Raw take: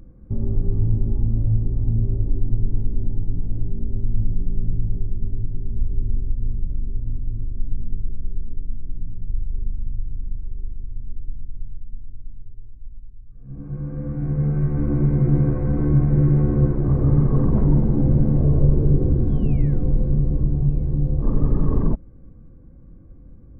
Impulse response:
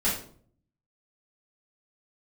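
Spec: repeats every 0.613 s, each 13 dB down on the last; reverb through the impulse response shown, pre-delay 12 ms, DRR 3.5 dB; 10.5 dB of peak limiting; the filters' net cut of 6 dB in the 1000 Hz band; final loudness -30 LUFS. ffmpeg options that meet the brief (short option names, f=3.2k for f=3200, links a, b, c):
-filter_complex "[0:a]equalizer=f=1k:t=o:g=-8,alimiter=limit=-15dB:level=0:latency=1,aecho=1:1:613|1226|1839:0.224|0.0493|0.0108,asplit=2[a][b];[1:a]atrim=start_sample=2205,adelay=12[c];[b][c]afir=irnorm=-1:irlink=0,volume=-14dB[d];[a][d]amix=inputs=2:normalize=0,volume=-6.5dB"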